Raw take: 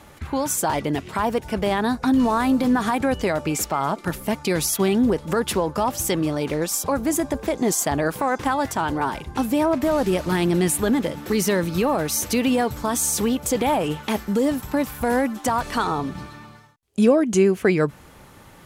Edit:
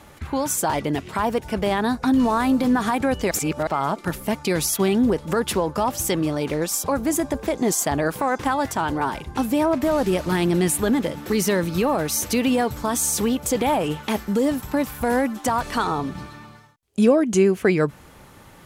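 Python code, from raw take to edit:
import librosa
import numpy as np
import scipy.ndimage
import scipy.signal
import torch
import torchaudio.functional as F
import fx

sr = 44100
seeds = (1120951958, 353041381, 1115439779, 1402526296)

y = fx.edit(x, sr, fx.reverse_span(start_s=3.31, length_s=0.36), tone=tone)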